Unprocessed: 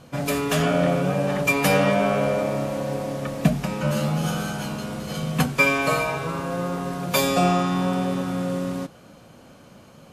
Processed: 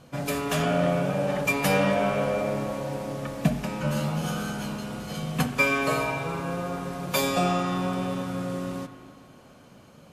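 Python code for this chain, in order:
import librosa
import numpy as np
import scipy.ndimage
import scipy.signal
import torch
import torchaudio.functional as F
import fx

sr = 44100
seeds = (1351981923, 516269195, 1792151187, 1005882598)

y = fx.rev_spring(x, sr, rt60_s=2.3, pass_ms=(41, 58), chirp_ms=65, drr_db=8.5)
y = y * 10.0 ** (-4.0 / 20.0)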